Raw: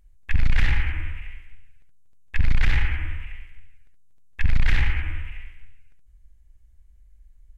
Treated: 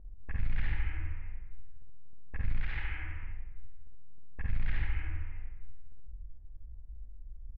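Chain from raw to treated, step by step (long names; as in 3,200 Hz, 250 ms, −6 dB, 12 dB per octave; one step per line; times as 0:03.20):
low-pass that shuts in the quiet parts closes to 680 Hz, open at −12.5 dBFS
0:02.62–0:03.23: low-shelf EQ 470 Hz −9 dB
downward compressor 2.5 to 1, threshold −49 dBFS, peak gain reduction 22.5 dB
high-frequency loss of the air 310 metres
ambience of single reflections 51 ms −4.5 dB, 73 ms −6 dB
level +7.5 dB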